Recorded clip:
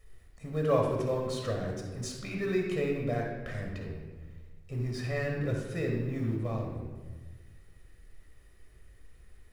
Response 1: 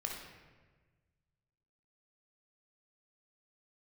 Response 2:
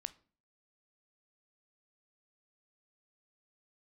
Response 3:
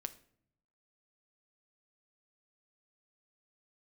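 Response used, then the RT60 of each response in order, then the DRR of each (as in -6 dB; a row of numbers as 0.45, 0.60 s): 1; 1.4, 0.40, 0.65 s; -0.5, 13.5, 9.5 dB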